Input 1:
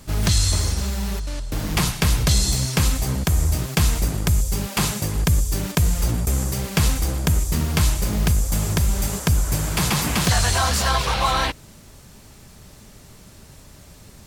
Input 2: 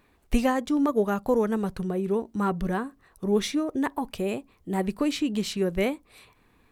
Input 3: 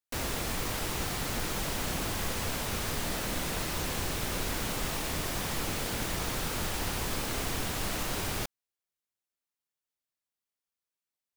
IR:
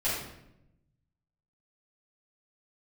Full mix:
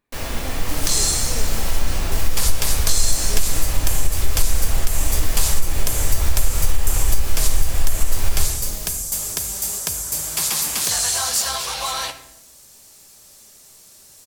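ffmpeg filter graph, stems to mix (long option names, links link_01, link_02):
-filter_complex "[0:a]bass=frequency=250:gain=-14,treble=frequency=4000:gain=14,adelay=600,volume=-8dB,asplit=2[link_01][link_02];[link_02]volume=-16dB[link_03];[1:a]volume=-15dB[link_04];[2:a]asubboost=boost=7.5:cutoff=67,volume=-0.5dB,asplit=2[link_05][link_06];[link_06]volume=-6.5dB[link_07];[3:a]atrim=start_sample=2205[link_08];[link_03][link_07]amix=inputs=2:normalize=0[link_09];[link_09][link_08]afir=irnorm=-1:irlink=0[link_10];[link_01][link_04][link_05][link_10]amix=inputs=4:normalize=0,acompressor=threshold=-8dB:ratio=6"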